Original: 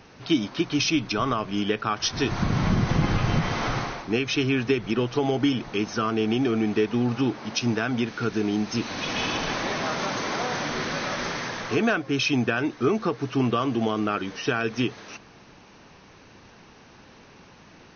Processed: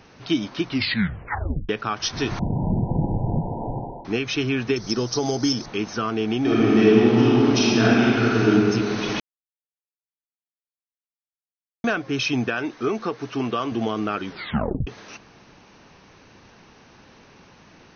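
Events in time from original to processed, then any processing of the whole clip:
0.66 s: tape stop 1.03 s
2.39–4.05 s: brick-wall FIR low-pass 1 kHz
4.76–5.66 s: resonant high shelf 3.8 kHz +11 dB, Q 3
6.41–8.49 s: reverb throw, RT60 2.7 s, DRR -7.5 dB
9.20–11.84 s: mute
12.48–13.72 s: peaking EQ 67 Hz -9.5 dB 2.6 oct
14.27 s: tape stop 0.60 s

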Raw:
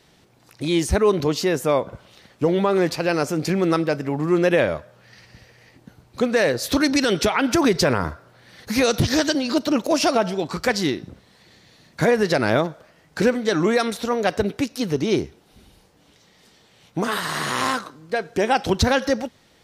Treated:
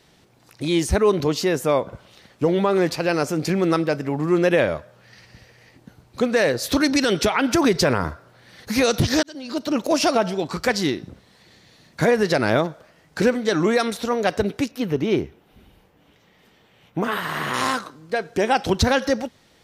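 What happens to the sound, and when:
9.23–9.87 s: fade in
14.71–17.54 s: high-order bell 6.5 kHz -10 dB

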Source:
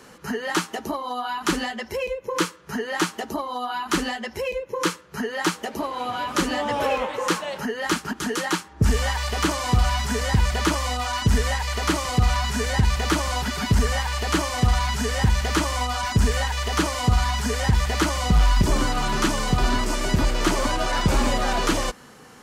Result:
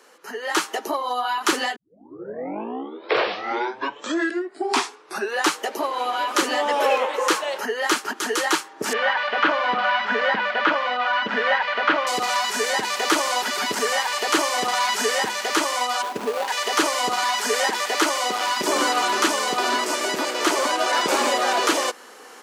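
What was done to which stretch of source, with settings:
1.76 s: tape start 3.84 s
8.93–12.07 s: cabinet simulation 160–3200 Hz, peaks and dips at 210 Hz +7 dB, 380 Hz -10 dB, 560 Hz +4 dB, 1.5 kHz +7 dB
16.02–16.48 s: median filter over 25 samples
17.23–18.48 s: high-pass 210 Hz 24 dB/octave
whole clip: high-pass 340 Hz 24 dB/octave; level rider gain up to 12 dB; trim -4.5 dB

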